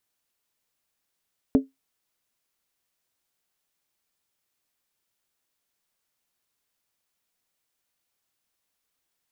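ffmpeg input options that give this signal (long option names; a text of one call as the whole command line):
ffmpeg -f lavfi -i "aevalsrc='0.299*pow(10,-3*t/0.17)*sin(2*PI*268*t)+0.112*pow(10,-3*t/0.135)*sin(2*PI*427.2*t)+0.0422*pow(10,-3*t/0.116)*sin(2*PI*572.4*t)+0.0158*pow(10,-3*t/0.112)*sin(2*PI*615.3*t)+0.00596*pow(10,-3*t/0.104)*sin(2*PI*711*t)':duration=0.63:sample_rate=44100" out.wav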